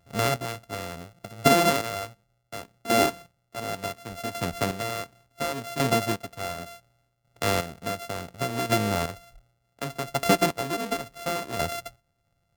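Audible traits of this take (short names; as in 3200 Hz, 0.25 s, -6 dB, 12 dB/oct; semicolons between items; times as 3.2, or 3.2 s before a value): a buzz of ramps at a fixed pitch in blocks of 64 samples; chopped level 0.69 Hz, depth 65%, duty 25%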